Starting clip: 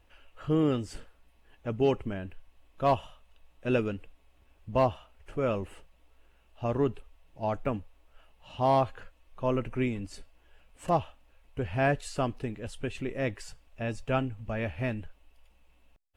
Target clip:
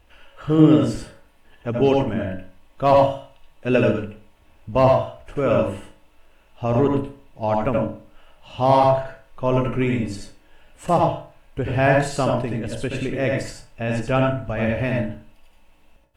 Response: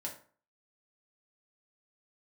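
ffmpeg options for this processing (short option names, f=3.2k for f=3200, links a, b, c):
-filter_complex "[0:a]asplit=2[a][b];[1:a]atrim=start_sample=2205,adelay=76[c];[b][c]afir=irnorm=-1:irlink=0,volume=0.5dB[d];[a][d]amix=inputs=2:normalize=0,volume=7dB"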